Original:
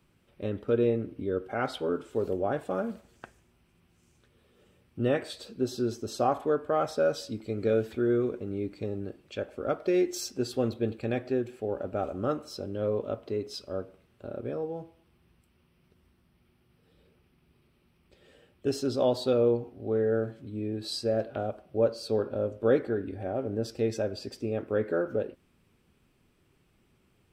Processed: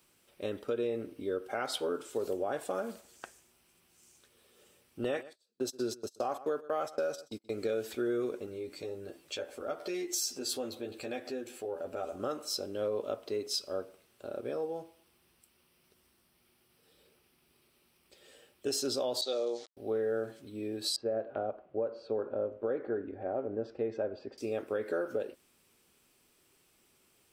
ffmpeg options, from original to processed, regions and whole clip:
ffmpeg -i in.wav -filter_complex "[0:a]asettb=1/sr,asplit=3[link_01][link_02][link_03];[link_01]atrim=end=5.044[link_04];[link_02]atrim=start=5.04:end=7.52,asetpts=PTS-STARTPTS,afade=type=in:duration=0.004:curve=qsin,afade=type=out:start_time=2.476:duration=0.004:curve=qsin,agate=range=-36dB:threshold=-36dB:ratio=16:release=100:detection=peak,aecho=1:1:127:0.0708,atrim=end_sample=109368[link_05];[link_03]atrim=start=7.516[link_06];[link_04][link_05]acrossfade=duration=0.004:curve1=hsin:curve2=qsin[link_07];[link_07][link_06]acrossfade=duration=0.004:curve1=qsin:curve2=hsin,asettb=1/sr,asplit=3[link_08][link_09][link_10];[link_08]atrim=end=8.464[link_11];[link_09]atrim=start=8.46:end=12.2,asetpts=PTS-STARTPTS,afade=type=in:duration=0.004:curve=qsin,afade=type=out:start_time=3.736:duration=0.004:curve=qsin,asplit=2[link_12][link_13];[link_13]adelay=12,volume=-3dB[link_14];[link_12][link_14]amix=inputs=2:normalize=0,atrim=end_sample=164934,acompressor=threshold=-37dB:ratio=2:attack=3.2:release=140:knee=1:detection=peak[link_15];[link_10]atrim=start=12.196[link_16];[link_11][link_15]acrossfade=duration=0.004:curve1=hsin:curve2=qsin[link_17];[link_17][link_16]acrossfade=duration=0.004:curve1=qsin:curve2=hsin,asettb=1/sr,asplit=3[link_18][link_19][link_20];[link_18]atrim=end=19.214[link_21];[link_19]atrim=start=19.21:end=19.77,asetpts=PTS-STARTPTS,afade=type=in:duration=0.004:curve=qsin,afade=type=out:start_time=0.556:duration=0.004:curve=qsin,agate=range=-33dB:threshold=-38dB:ratio=3:release=100:detection=peak,aeval=exprs='val(0)*gte(abs(val(0)),0.00531)':channel_layout=same,highpass=460,equalizer=frequency=470:width_type=q:width=4:gain=-4,equalizer=frequency=970:width_type=q:width=4:gain=-9,equalizer=frequency=1500:width_type=q:width=4:gain=-9,equalizer=frequency=2600:width_type=q:width=4:gain=-8,equalizer=frequency=4000:width_type=q:width=4:gain=7,equalizer=frequency=5900:width_type=q:width=4:gain=3,lowpass=frequency=6600:width=0.5412,lowpass=frequency=6600:width=1.3066[link_22];[link_20]atrim=start=19.766[link_23];[link_21][link_22]acrossfade=duration=0.004:curve1=hsin:curve2=qsin[link_24];[link_24][link_23]acrossfade=duration=0.004:curve1=qsin:curve2=hsin,asettb=1/sr,asplit=3[link_25][link_26][link_27];[link_25]atrim=end=20.964[link_28];[link_26]atrim=start=20.96:end=24.38,asetpts=PTS-STARTPTS,afade=type=in:duration=0.004:curve=qsin,afade=type=out:start_time=3.416:duration=0.004:curve=qsin,lowpass=1800,aemphasis=mode=reproduction:type=75kf[link_29];[link_27]atrim=start=24.376[link_30];[link_28][link_29]acrossfade=duration=0.004:curve1=hsin:curve2=qsin[link_31];[link_31][link_30]acrossfade=duration=0.004:curve1=qsin:curve2=hsin,bass=frequency=250:gain=-13,treble=frequency=4000:gain=12,alimiter=limit=-21.5dB:level=0:latency=1:release=115,acompressor=threshold=-28dB:ratio=6" out.wav

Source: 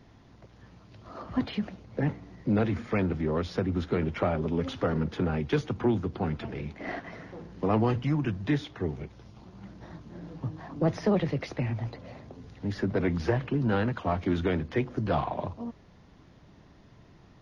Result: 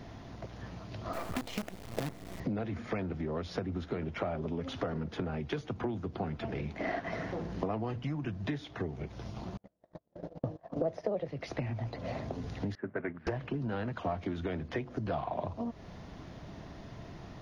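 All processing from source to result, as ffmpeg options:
ffmpeg -i in.wav -filter_complex "[0:a]asettb=1/sr,asplit=3[link_01][link_02][link_03];[link_01]atrim=end=1.134[link_04];[link_02]atrim=start=1.13:end=2.4,asetpts=PTS-STARTPTS,afade=type=in:duration=0.004:curve=qsin,afade=type=out:start_time=1.266:duration=0.004:curve=qsin,bandreject=frequency=1600:width=14,acompressor=threshold=-28dB:ratio=6:attack=3.2:release=140:knee=1:detection=peak,acrusher=bits=6:dc=4:mix=0:aa=0.000001[link_05];[link_03]atrim=start=2.396[link_06];[link_04][link_05]acrossfade=duration=0.004:curve1=hsin:curve2=qsin[link_07];[link_07][link_06]acrossfade=duration=0.004:curve1=qsin:curve2=hsin,asettb=1/sr,asplit=3[link_08][link_09][link_10];[link_08]atrim=end=9.574[link_11];[link_09]atrim=start=9.57:end=11.28,asetpts=PTS-STARTPTS,afade=type=in:duration=0.004:curve=qsin,afade=type=out:start_time=1.706:duration=0.004:curve=qsin,agate=range=-47dB:threshold=-40dB:ratio=16:release=100:detection=peak,equalizer=frequency=540:width_type=o:width=0.91:gain=14.5[link_12];[link_10]atrim=start=11.276[link_13];[link_11][link_12]acrossfade=duration=0.004:curve1=hsin:curve2=qsin[link_14];[link_14][link_13]acrossfade=duration=0.004:curve1=qsin:curve2=hsin,asettb=1/sr,asplit=3[link_15][link_16][link_17];[link_15]atrim=end=12.754[link_18];[link_16]atrim=start=12.75:end=13.27,asetpts=PTS-STARTPTS,afade=type=in:duration=0.004:curve=qsin,afade=type=out:start_time=0.516:duration=0.004:curve=qsin,agate=range=-14dB:threshold=-28dB:ratio=16:release=100:detection=peak,highpass=190,equalizer=frequency=190:width_type=q:width=4:gain=-8,equalizer=frequency=290:width_type=q:width=4:gain=-5,equalizer=frequency=490:width_type=q:width=4:gain=-7,equalizer=frequency=710:width_type=q:width=4:gain=-8,equalizer=frequency=1000:width_type=q:width=4:gain=-4,equalizer=frequency=1600:width_type=q:width=4:gain=4,lowpass=frequency=2100:width=0.5412,lowpass=frequency=2100:width=1.3066[link_19];[link_17]atrim=start=13.266[link_20];[link_18][link_19]acrossfade=duration=0.004:curve1=hsin:curve2=qsin[link_21];[link_21][link_20]acrossfade=duration=0.004:curve1=qsin:curve2=hsin,acompressor=threshold=-41dB:ratio=8,equalizer=frequency=670:width_type=o:width=0.26:gain=6,volume=8dB" out.wav

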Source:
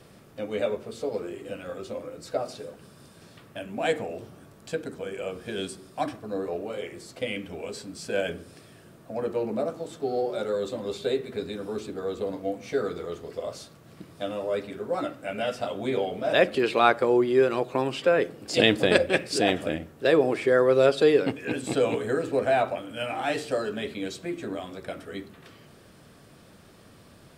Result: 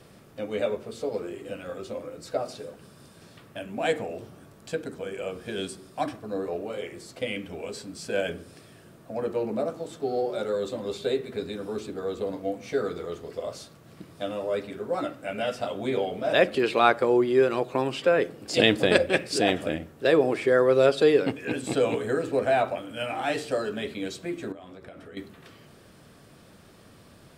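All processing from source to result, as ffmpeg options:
ffmpeg -i in.wav -filter_complex "[0:a]asettb=1/sr,asplit=3[link_01][link_02][link_03];[link_01]atrim=end=24.524[link_04];[link_02]atrim=start=24.52:end=25.17,asetpts=PTS-STARTPTS,afade=type=in:duration=0.004:curve=qsin,afade=type=out:start_time=0.646:duration=0.004:curve=qsin,acompressor=threshold=-41dB:ratio=5:attack=3.2:release=140:knee=1:detection=peak,highshelf=frequency=4400:gain=-9.5[link_05];[link_03]atrim=start=25.166[link_06];[link_04][link_05]acrossfade=duration=0.004:curve1=hsin:curve2=qsin[link_07];[link_07][link_06]acrossfade=duration=0.004:curve1=qsin:curve2=hsin" out.wav

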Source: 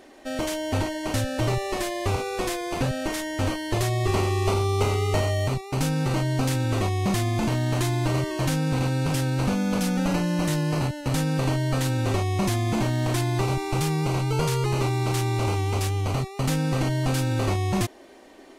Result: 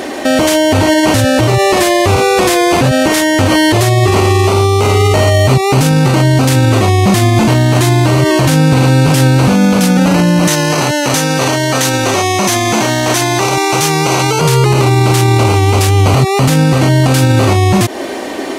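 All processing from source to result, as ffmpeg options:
ffmpeg -i in.wav -filter_complex "[0:a]asettb=1/sr,asplit=3[link_01][link_02][link_03];[link_01]atrim=end=10.474[link_04];[link_02]atrim=start=10.47:end=14.41,asetpts=PTS-STARTPTS,afade=type=in:duration=0.004:curve=qsin,afade=type=out:start_time=3.936:duration=0.004:curve=qsin,highpass=frequency=530:poles=1,equalizer=frequency=6100:width=7.1:gain=7.5[link_05];[link_03]atrim=start=14.406[link_06];[link_04][link_05]acrossfade=duration=0.004:curve1=hsin:curve2=qsin[link_07];[link_07][link_06]acrossfade=duration=0.004:curve1=qsin:curve2=hsin,acompressor=threshold=-27dB:ratio=6,highpass=85,alimiter=level_in=29.5dB:limit=-1dB:release=50:level=0:latency=1,volume=-1dB" out.wav

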